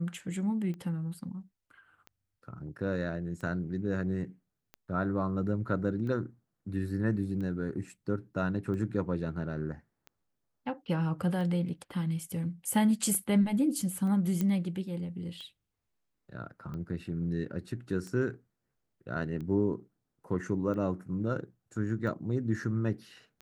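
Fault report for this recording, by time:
tick 45 rpm -31 dBFS
14.41 s: pop -18 dBFS

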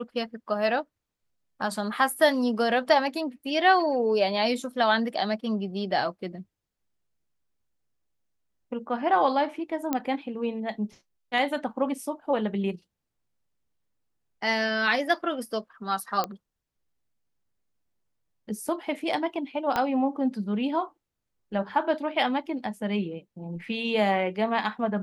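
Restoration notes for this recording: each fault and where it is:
9.93 s: pop -12 dBFS
16.24 s: pop -14 dBFS
19.76 s: pop -12 dBFS

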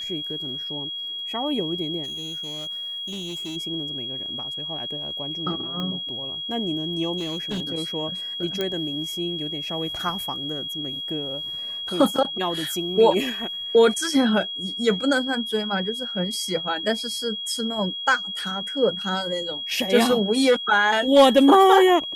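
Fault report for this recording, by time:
whine 3.3 kHz -29 dBFS
2.03–3.57 s: clipped -29.5 dBFS
5.80 s: pop -18 dBFS
7.17–7.62 s: clipped -24.5 dBFS
8.61 s: pop -12 dBFS

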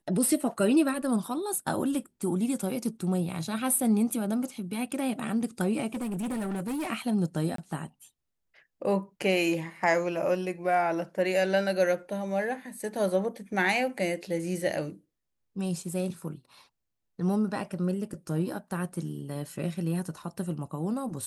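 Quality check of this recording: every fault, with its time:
5.87–6.89 s: clipped -29 dBFS
7.56–7.58 s: dropout 23 ms

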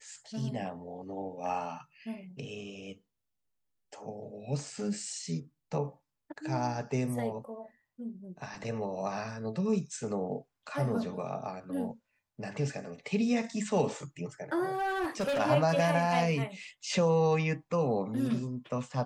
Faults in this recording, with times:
14.74–15.40 s: clipped -27.5 dBFS

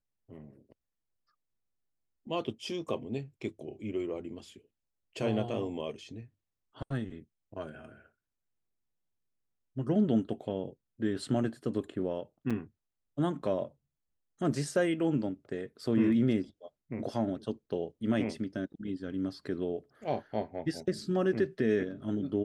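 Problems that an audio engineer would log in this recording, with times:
12.50–12.51 s: dropout 5.9 ms

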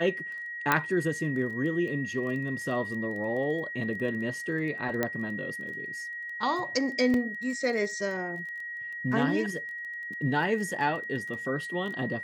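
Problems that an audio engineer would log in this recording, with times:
crackle 13 per s -37 dBFS
whine 1.9 kHz -35 dBFS
0.72 s: pop -8 dBFS
5.03 s: pop -13 dBFS
7.14 s: dropout 2 ms

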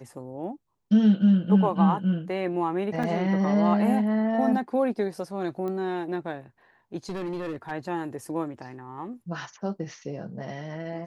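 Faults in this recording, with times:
3.03 s: dropout 4.8 ms
5.68 s: pop -23 dBFS
7.09–7.72 s: clipped -28.5 dBFS

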